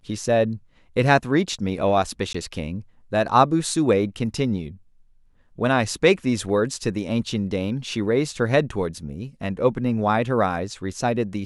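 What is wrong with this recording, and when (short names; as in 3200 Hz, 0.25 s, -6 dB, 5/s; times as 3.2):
2.33–2.34 gap 14 ms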